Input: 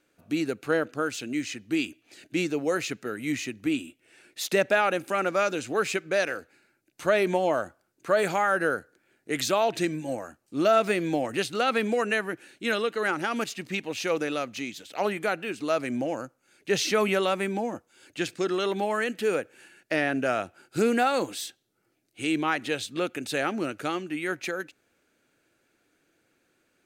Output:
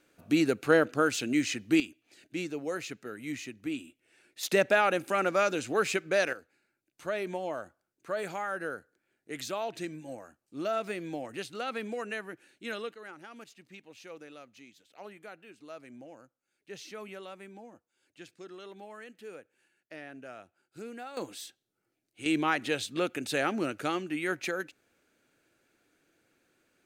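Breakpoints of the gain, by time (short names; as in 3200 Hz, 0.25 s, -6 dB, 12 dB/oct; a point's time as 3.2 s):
+2.5 dB
from 1.8 s -8 dB
from 4.43 s -1.5 dB
from 6.33 s -10.5 dB
from 12.94 s -19.5 dB
from 21.17 s -8.5 dB
from 22.26 s -1.5 dB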